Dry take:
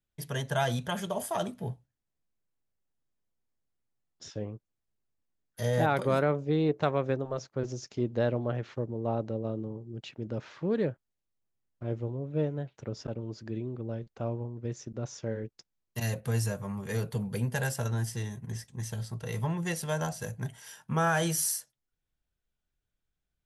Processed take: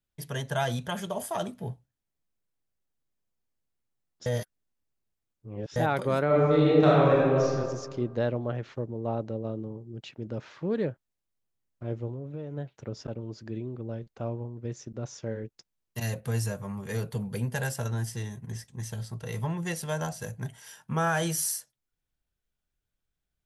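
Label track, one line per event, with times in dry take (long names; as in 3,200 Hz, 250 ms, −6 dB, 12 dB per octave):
4.260000	5.760000	reverse
6.260000	7.530000	thrown reverb, RT60 1.7 s, DRR −7.5 dB
12.130000	12.570000	downward compressor 12 to 1, threshold −32 dBFS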